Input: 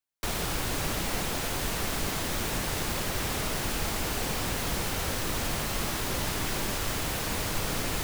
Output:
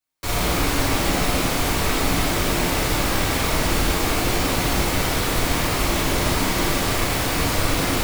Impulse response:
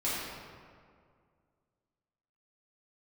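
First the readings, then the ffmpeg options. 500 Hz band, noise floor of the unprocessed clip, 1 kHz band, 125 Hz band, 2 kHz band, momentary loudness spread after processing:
+10.5 dB, -32 dBFS, +10.5 dB, +9.5 dB, +9.5 dB, 1 LU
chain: -filter_complex "[1:a]atrim=start_sample=2205,afade=t=out:st=0.31:d=0.01,atrim=end_sample=14112[a];[0:a][a]afir=irnorm=-1:irlink=0,volume=2.5dB"

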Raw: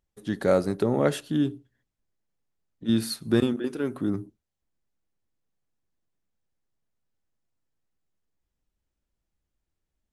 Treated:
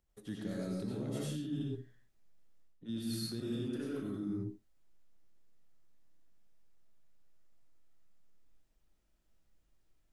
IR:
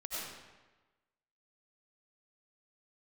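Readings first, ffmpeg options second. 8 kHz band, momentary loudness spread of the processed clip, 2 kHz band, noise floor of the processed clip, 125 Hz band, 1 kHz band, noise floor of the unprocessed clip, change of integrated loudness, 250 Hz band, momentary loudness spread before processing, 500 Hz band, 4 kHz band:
-9.0 dB, 8 LU, -16.5 dB, -75 dBFS, -8.5 dB, -20.5 dB, -84 dBFS, -13.0 dB, -11.5 dB, 7 LU, -17.0 dB, -9.5 dB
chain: -filter_complex "[0:a]acrossover=split=310|3000[a][b][c];[b]acompressor=threshold=-39dB:ratio=6[d];[a][d][c]amix=inputs=3:normalize=0[e];[1:a]atrim=start_sample=2205,afade=t=out:st=0.33:d=0.01,atrim=end_sample=14994[f];[e][f]afir=irnorm=-1:irlink=0,areverse,acompressor=threshold=-41dB:ratio=6,areverse,volume=4.5dB"

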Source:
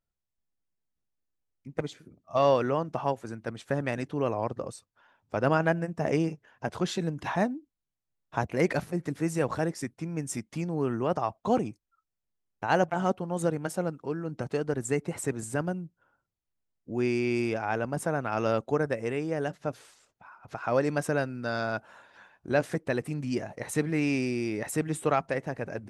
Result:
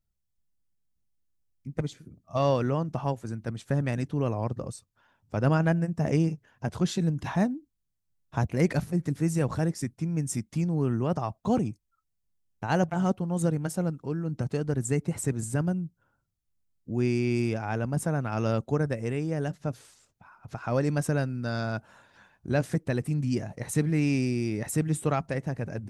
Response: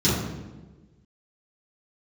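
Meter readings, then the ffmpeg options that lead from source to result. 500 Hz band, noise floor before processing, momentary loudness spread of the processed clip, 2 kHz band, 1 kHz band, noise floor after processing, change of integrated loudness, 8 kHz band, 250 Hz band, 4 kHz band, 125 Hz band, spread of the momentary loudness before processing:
-2.5 dB, under -85 dBFS, 10 LU, -3.0 dB, -3.5 dB, -78 dBFS, +1.0 dB, +2.0 dB, +3.0 dB, -0.5 dB, +7.0 dB, 10 LU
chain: -af "bass=f=250:g=12,treble=f=4k:g=6,volume=-3.5dB"

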